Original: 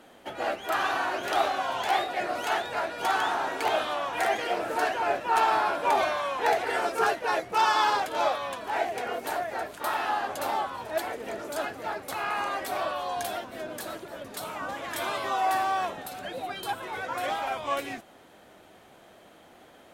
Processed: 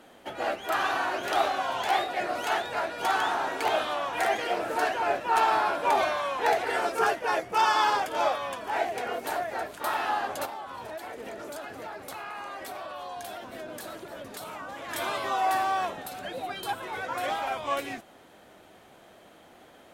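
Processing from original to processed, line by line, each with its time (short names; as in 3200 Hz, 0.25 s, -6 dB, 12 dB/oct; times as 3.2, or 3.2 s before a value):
6.99–8.75 notch 4000 Hz, Q 9.9
10.45–14.89 compressor, threshold -35 dBFS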